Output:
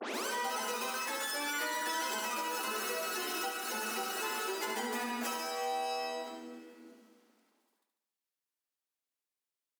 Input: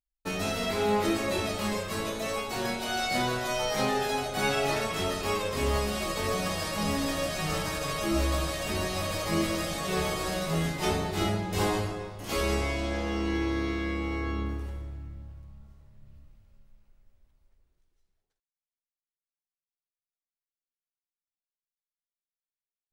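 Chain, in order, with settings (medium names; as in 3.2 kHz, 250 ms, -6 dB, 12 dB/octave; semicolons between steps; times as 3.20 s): tape start-up on the opening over 0.62 s; compression 10:1, threshold -40 dBFS, peak gain reduction 18.5 dB; speed mistake 33 rpm record played at 78 rpm; steep high-pass 220 Hz 96 dB/octave; feedback delay 72 ms, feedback 58%, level -7.5 dB; trim +6 dB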